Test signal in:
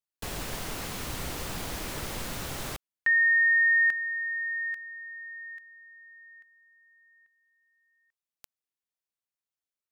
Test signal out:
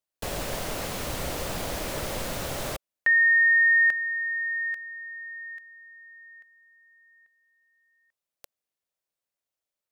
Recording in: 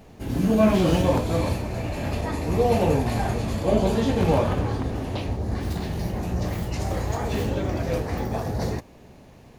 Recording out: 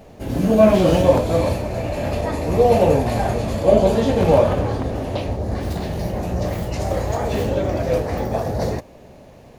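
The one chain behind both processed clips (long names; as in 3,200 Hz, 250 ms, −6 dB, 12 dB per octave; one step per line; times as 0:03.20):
parametric band 580 Hz +8 dB 0.62 octaves
level +2.5 dB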